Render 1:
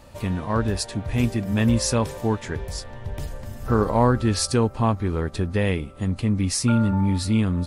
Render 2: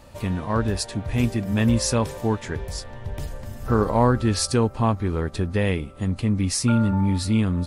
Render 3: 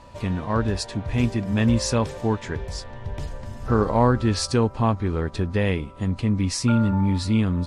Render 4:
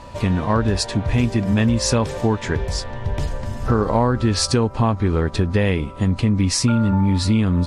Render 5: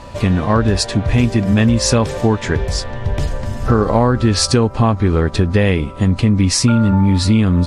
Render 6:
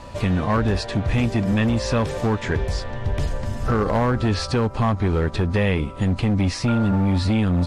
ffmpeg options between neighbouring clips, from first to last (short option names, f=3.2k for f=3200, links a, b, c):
-af anull
-af "aeval=exprs='val(0)+0.00316*sin(2*PI*980*n/s)':c=same,lowpass=7k"
-af "acompressor=threshold=-22dB:ratio=6,volume=8dB"
-af "bandreject=f=940:w=15,volume=4.5dB"
-filter_complex "[0:a]acrossover=split=3800[a][b];[b]acompressor=threshold=-35dB:ratio=4:attack=1:release=60[c];[a][c]amix=inputs=2:normalize=0,acrossover=split=1200[d][e];[d]asoftclip=type=hard:threshold=-12.5dB[f];[f][e]amix=inputs=2:normalize=0,volume=-4dB"